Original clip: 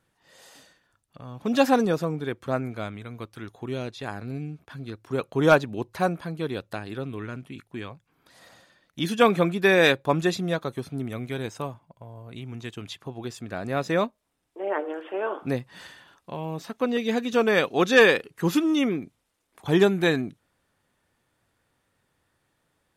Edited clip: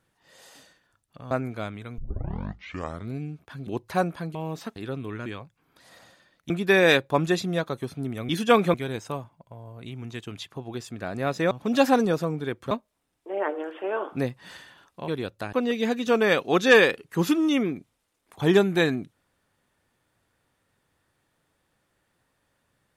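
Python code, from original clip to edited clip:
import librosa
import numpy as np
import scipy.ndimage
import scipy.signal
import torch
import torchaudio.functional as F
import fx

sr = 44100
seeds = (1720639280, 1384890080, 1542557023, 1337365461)

y = fx.edit(x, sr, fx.move(start_s=1.31, length_s=1.2, to_s=14.01),
    fx.tape_start(start_s=3.18, length_s=1.17),
    fx.cut(start_s=4.87, length_s=0.85),
    fx.swap(start_s=6.4, length_s=0.45, other_s=16.38, other_length_s=0.41),
    fx.cut(start_s=7.35, length_s=0.41),
    fx.move(start_s=9.0, length_s=0.45, to_s=11.24), tone=tone)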